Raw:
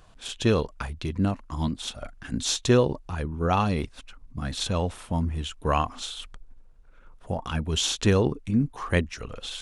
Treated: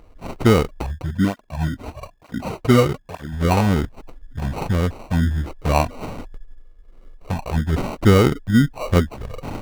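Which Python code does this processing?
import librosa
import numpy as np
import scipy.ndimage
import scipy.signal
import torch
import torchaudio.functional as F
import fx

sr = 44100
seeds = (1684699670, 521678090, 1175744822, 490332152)

y = fx.env_phaser(x, sr, low_hz=150.0, high_hz=1900.0, full_db=-18.5)
y = fx.sample_hold(y, sr, seeds[0], rate_hz=1700.0, jitter_pct=0)
y = fx.high_shelf(y, sr, hz=3500.0, db=-8.5)
y = fx.flanger_cancel(y, sr, hz=1.1, depth_ms=6.2, at=(0.97, 3.32), fade=0.02)
y = y * 10.0 ** (8.5 / 20.0)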